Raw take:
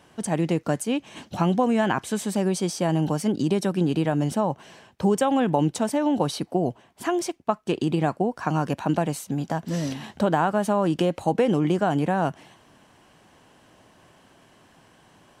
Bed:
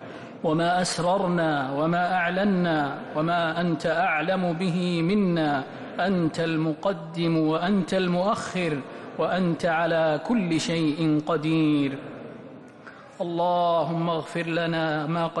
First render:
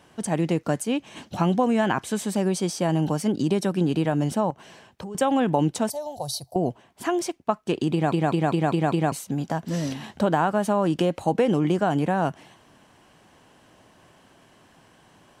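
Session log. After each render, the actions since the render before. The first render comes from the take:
0:04.50–0:05.15: downward compressor, threshold −33 dBFS
0:05.90–0:06.56: drawn EQ curve 130 Hz 0 dB, 200 Hz −23 dB, 310 Hz −23 dB, 440 Hz −15 dB, 670 Hz 0 dB, 1,400 Hz −22 dB, 2,800 Hz −19 dB, 4,300 Hz +4 dB, 8,000 Hz +1 dB, 11,000 Hz +9 dB
0:07.92: stutter in place 0.20 s, 6 plays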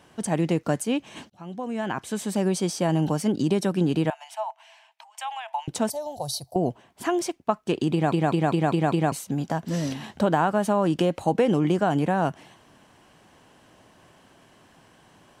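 0:01.30–0:02.45: fade in
0:04.10–0:05.68: Chebyshev high-pass with heavy ripple 640 Hz, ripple 9 dB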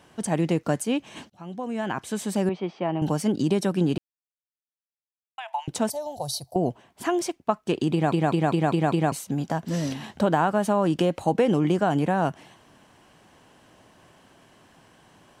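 0:02.49–0:03.02: loudspeaker in its box 230–2,700 Hz, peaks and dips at 260 Hz −7 dB, 500 Hz −5 dB, 1,600 Hz −8 dB
0:03.98–0:05.38: silence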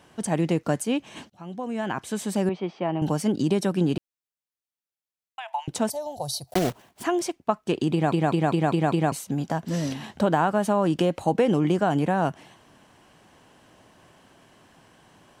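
0:06.47–0:07.05: one scale factor per block 3 bits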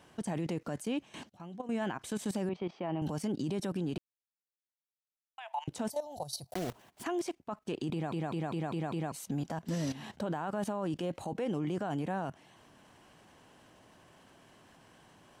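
output level in coarse steps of 15 dB
brickwall limiter −26.5 dBFS, peak gain reduction 9.5 dB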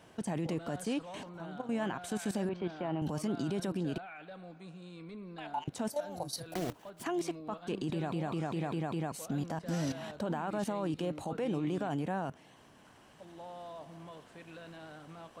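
mix in bed −24 dB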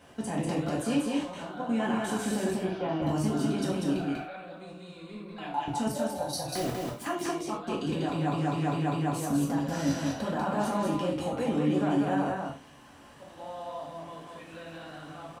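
single-tap delay 193 ms −3 dB
reverb whose tail is shaped and stops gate 140 ms falling, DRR −3 dB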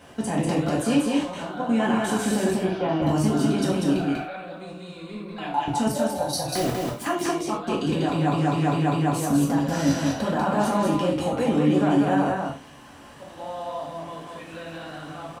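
level +6.5 dB

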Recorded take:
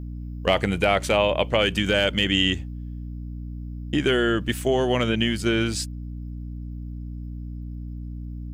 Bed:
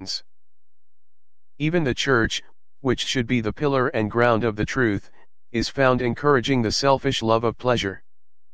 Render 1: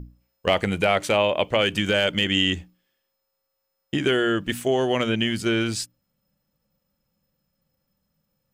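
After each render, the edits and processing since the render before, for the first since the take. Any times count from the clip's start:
mains-hum notches 60/120/180/240/300 Hz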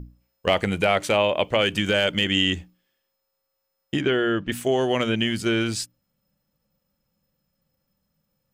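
0:04.01–0:04.52: high-frequency loss of the air 160 metres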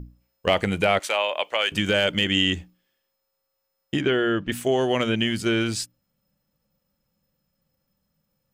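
0:00.99–0:01.72: high-pass filter 730 Hz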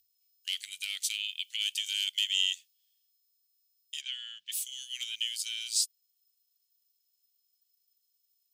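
inverse Chebyshev high-pass filter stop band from 1,000 Hz, stop band 60 dB
high-shelf EQ 6,300 Hz +5.5 dB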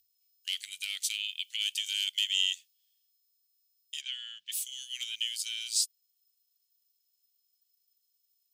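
no processing that can be heard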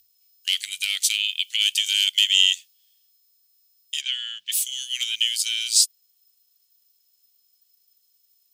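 level +11 dB

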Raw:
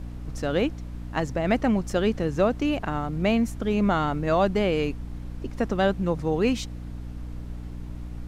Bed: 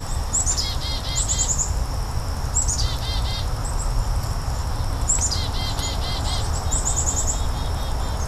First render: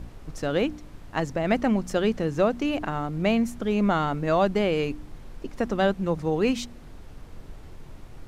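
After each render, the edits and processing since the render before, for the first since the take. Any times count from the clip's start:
hum removal 60 Hz, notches 5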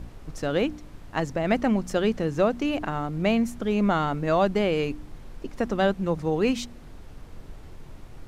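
no processing that can be heard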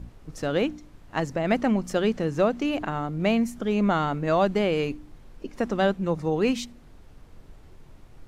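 noise reduction from a noise print 6 dB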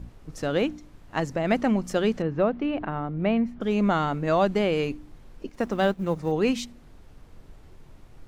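0:02.22–0:03.61: high-frequency loss of the air 360 metres
0:05.49–0:06.32: mu-law and A-law mismatch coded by A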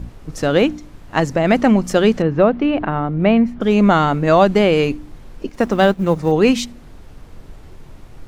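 level +10 dB
brickwall limiter −1 dBFS, peak gain reduction 2.5 dB

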